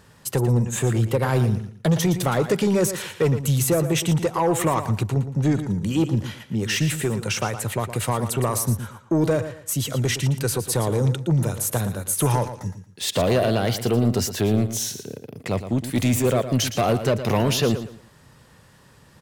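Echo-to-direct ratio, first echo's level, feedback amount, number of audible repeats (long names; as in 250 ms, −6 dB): −10.5 dB, −11.0 dB, 26%, 3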